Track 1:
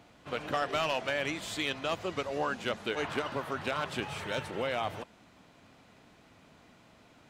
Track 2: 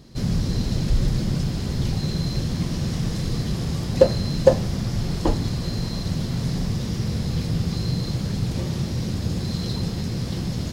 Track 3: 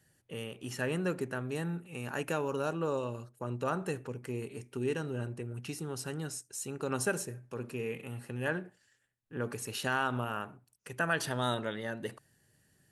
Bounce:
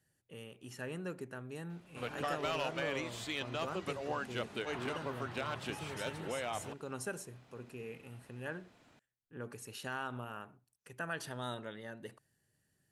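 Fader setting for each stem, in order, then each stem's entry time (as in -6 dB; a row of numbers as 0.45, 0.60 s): -6.0 dB, off, -9.0 dB; 1.70 s, off, 0.00 s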